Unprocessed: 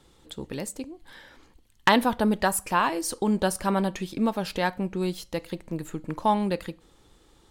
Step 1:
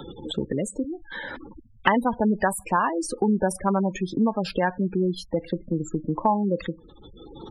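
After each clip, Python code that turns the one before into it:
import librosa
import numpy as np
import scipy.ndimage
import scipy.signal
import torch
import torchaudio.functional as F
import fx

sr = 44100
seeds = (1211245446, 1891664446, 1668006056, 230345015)

y = fx.spec_gate(x, sr, threshold_db=-15, keep='strong')
y = fx.band_squash(y, sr, depth_pct=70)
y = y * 10.0 ** (2.5 / 20.0)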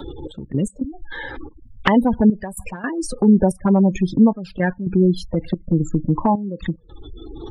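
y = fx.low_shelf(x, sr, hz=200.0, db=9.5)
y = fx.env_flanger(y, sr, rest_ms=3.6, full_db=-14.5)
y = fx.step_gate(y, sr, bpm=111, pattern='xx..x.xxxxx.xxx', floor_db=-12.0, edge_ms=4.5)
y = y * 10.0 ** (5.5 / 20.0)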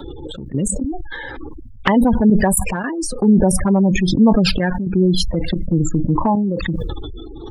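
y = fx.sustainer(x, sr, db_per_s=26.0)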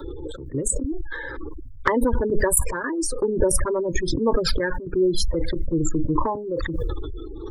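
y = fx.fixed_phaser(x, sr, hz=740.0, stages=6)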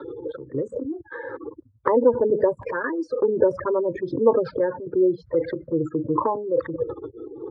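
y = fx.filter_lfo_lowpass(x, sr, shape='saw_down', hz=0.38, low_hz=700.0, high_hz=1800.0, q=1.4)
y = fx.cabinet(y, sr, low_hz=120.0, low_slope=24, high_hz=6900.0, hz=(180.0, 490.0, 4500.0), db=(-5, 9, 8))
y = y * 10.0 ** (-2.0 / 20.0)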